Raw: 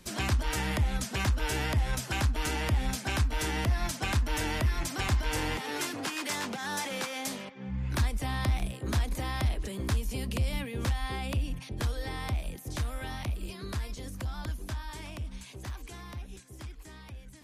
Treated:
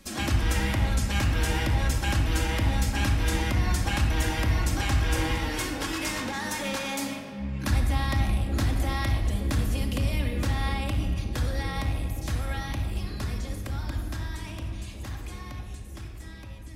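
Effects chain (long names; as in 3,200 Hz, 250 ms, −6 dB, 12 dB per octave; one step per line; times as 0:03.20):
rectangular room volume 2,800 cubic metres, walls mixed, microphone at 2.1 metres
speed change +4%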